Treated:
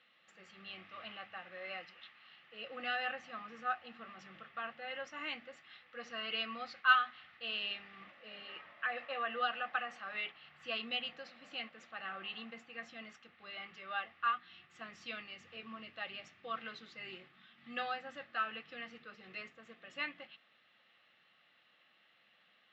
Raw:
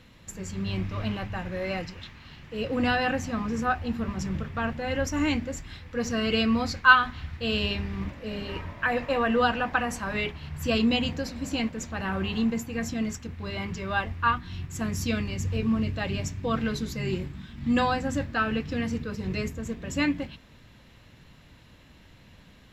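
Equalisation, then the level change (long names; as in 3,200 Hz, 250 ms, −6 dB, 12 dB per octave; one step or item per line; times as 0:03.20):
Butterworth band-reject 980 Hz, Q 5.6
loudspeaker in its box 260–2,400 Hz, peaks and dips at 280 Hz −9 dB, 420 Hz −8 dB, 600 Hz −3 dB, 880 Hz −4 dB, 1,600 Hz −8 dB, 2,300 Hz −9 dB
first difference
+10.5 dB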